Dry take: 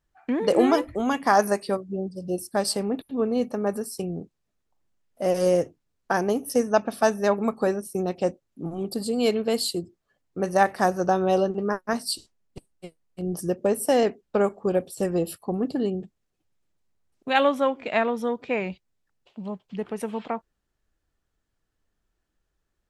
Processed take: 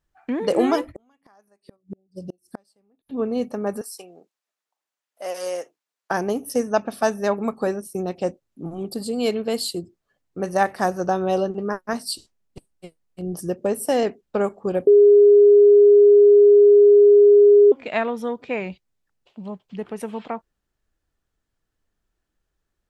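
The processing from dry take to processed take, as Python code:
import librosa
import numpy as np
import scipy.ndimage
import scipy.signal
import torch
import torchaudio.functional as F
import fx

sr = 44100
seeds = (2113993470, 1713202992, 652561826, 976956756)

y = fx.gate_flip(x, sr, shuts_db=-22.0, range_db=-38, at=(0.91, 3.08), fade=0.02)
y = fx.highpass(y, sr, hz=750.0, slope=12, at=(3.81, 6.11))
y = fx.edit(y, sr, fx.bleep(start_s=14.87, length_s=2.85, hz=410.0, db=-8.0), tone=tone)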